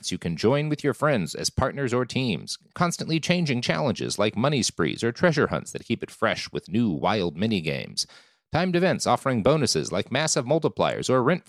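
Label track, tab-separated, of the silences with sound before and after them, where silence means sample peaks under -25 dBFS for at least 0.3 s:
8.030000	8.530000	silence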